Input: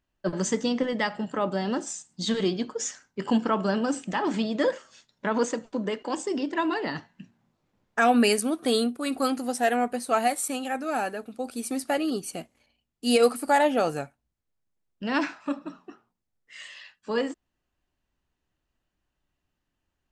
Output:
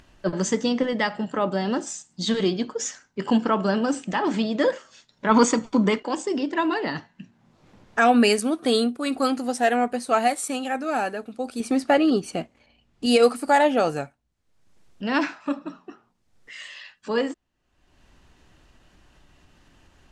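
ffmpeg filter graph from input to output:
ffmpeg -i in.wav -filter_complex "[0:a]asettb=1/sr,asplit=3[link_01][link_02][link_03];[link_01]atrim=end=5.294[link_04];[link_02]atrim=start=5.29:end=6,asetpts=PTS-STARTPTS,afade=type=in:duration=0.004:curve=qsin,afade=type=out:start_time=0.706:duration=0.004:curve=qsin,highshelf=frequency=9700:gain=6,acontrast=57,aecho=1:1:0.9:0.47,atrim=end_sample=31311[link_05];[link_03]atrim=start=5.996[link_06];[link_04][link_05]acrossfade=duration=0.004:curve1=hsin:curve2=qsin[link_07];[link_07][link_06]acrossfade=duration=0.004:curve1=qsin:curve2=hsin,asettb=1/sr,asplit=3[link_08][link_09][link_10];[link_08]atrim=end=11.604[link_11];[link_09]atrim=start=11.6:end=13.06,asetpts=PTS-STARTPTS,afade=type=in:duration=0.004:curve=qsin,afade=type=out:start_time=1.456:duration=0.004:curve=qsin,lowpass=frequency=3000:poles=1,acontrast=28[link_12];[link_10]atrim=start=13.056[link_13];[link_11][link_12]acrossfade=duration=0.004:curve1=hsin:curve2=qsin[link_14];[link_14][link_13]acrossfade=duration=0.004:curve1=qsin:curve2=hsin,lowpass=8300,acompressor=mode=upward:threshold=-40dB:ratio=2.5,volume=3dB" out.wav

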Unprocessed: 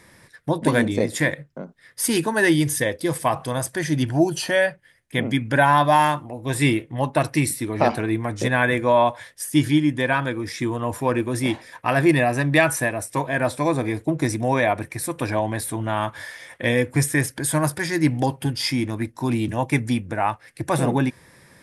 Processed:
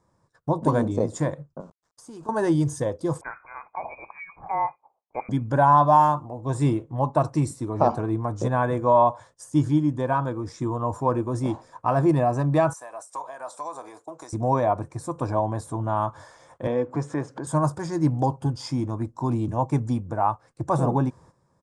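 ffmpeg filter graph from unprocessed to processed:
ffmpeg -i in.wav -filter_complex "[0:a]asettb=1/sr,asplit=3[link_01][link_02][link_03];[link_01]atrim=end=1.604[link_04];[link_02]atrim=start=1.6:end=2.29,asetpts=PTS-STARTPTS,afade=type=in:duration=0.004:curve=qsin,afade=type=out:start_time=0.686:duration=0.004:curve=qsin,highpass=110,acompressor=threshold=-34dB:ratio=8:attack=3.2:release=140:knee=1:detection=peak,aeval=exprs='val(0)*gte(abs(val(0)),0.00501)':channel_layout=same[link_05];[link_03]atrim=start=2.286[link_06];[link_04][link_05]acrossfade=duration=0.004:curve1=hsin:curve2=qsin[link_07];[link_07][link_06]acrossfade=duration=0.004:curve1=qsin:curve2=hsin,asettb=1/sr,asplit=3[link_08][link_09][link_10];[link_08]atrim=end=3.214[link_11];[link_09]atrim=start=3.21:end=5.29,asetpts=PTS-STARTPTS,afade=type=in:duration=0.004:curve=qsin,afade=type=out:start_time=2.076:duration=0.004:curve=qsin,highpass=230,equalizer=frequency=710:width=2.6:gain=-10.5,lowpass=frequency=2200:width_type=q:width=0.5098,lowpass=frequency=2200:width_type=q:width=0.6013,lowpass=frequency=2200:width_type=q:width=0.9,lowpass=frequency=2200:width_type=q:width=2.563,afreqshift=-2600[link_12];[link_10]atrim=start=5.286[link_13];[link_11][link_12]acrossfade=duration=0.004:curve1=hsin:curve2=qsin[link_14];[link_14][link_13]acrossfade=duration=0.004:curve1=qsin:curve2=hsin,asettb=1/sr,asplit=3[link_15][link_16][link_17];[link_15]atrim=end=12.734[link_18];[link_16]atrim=start=12.73:end=14.33,asetpts=PTS-STARTPTS,afade=type=in:duration=0.004:curve=qsin,afade=type=out:start_time=1.596:duration=0.004:curve=qsin,highpass=790,highshelf=frequency=5700:gain=9,acompressor=threshold=-30dB:ratio=3:attack=3.2:release=140:knee=1:detection=peak[link_19];[link_17]atrim=start=14.326[link_20];[link_18][link_19]acrossfade=duration=0.004:curve1=hsin:curve2=qsin[link_21];[link_21][link_20]acrossfade=duration=0.004:curve1=qsin:curve2=hsin,asettb=1/sr,asplit=3[link_22][link_23][link_24];[link_22]atrim=end=16.674[link_25];[link_23]atrim=start=16.67:end=17.47,asetpts=PTS-STARTPTS,afade=type=in:duration=0.004:curve=qsin,afade=type=out:start_time=0.796:duration=0.004:curve=qsin,highpass=220,lowpass=3500,acompressor=mode=upward:threshold=-24dB:ratio=2.5:attack=3.2:release=140:knee=2.83:detection=peak[link_26];[link_24]atrim=start=17.466[link_27];[link_25][link_26]acrossfade=duration=0.004:curve1=hsin:curve2=qsin[link_28];[link_28][link_27]acrossfade=duration=0.004:curve1=qsin:curve2=hsin,agate=range=-12dB:threshold=-46dB:ratio=16:detection=peak,firequalizer=gain_entry='entry(150,0);entry(220,-4);entry(1100,2);entry(1900,-22);entry(7100,-5);entry(12000,-29)':delay=0.05:min_phase=1" out.wav

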